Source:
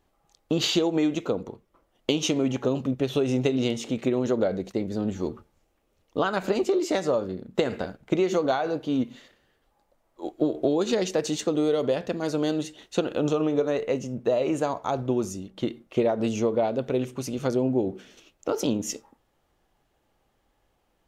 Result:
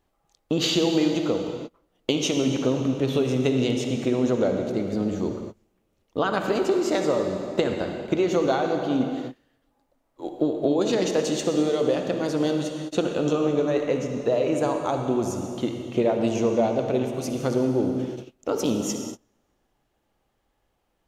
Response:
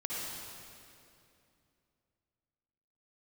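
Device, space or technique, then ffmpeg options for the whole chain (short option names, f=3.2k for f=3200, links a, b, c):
keyed gated reverb: -filter_complex "[0:a]asplit=3[a][b][c];[1:a]atrim=start_sample=2205[d];[b][d]afir=irnorm=-1:irlink=0[e];[c]apad=whole_len=929459[f];[e][f]sidechaingate=range=-33dB:threshold=-52dB:ratio=16:detection=peak,volume=-4dB[g];[a][g]amix=inputs=2:normalize=0,volume=-2.5dB"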